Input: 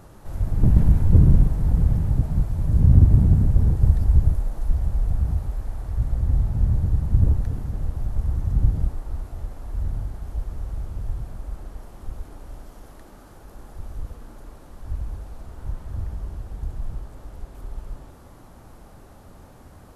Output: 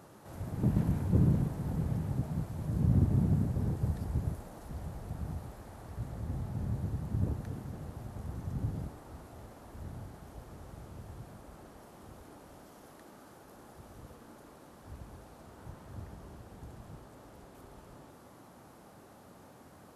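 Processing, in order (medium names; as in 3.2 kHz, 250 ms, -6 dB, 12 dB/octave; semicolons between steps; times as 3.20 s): high-pass 150 Hz 12 dB/octave; trim -4.5 dB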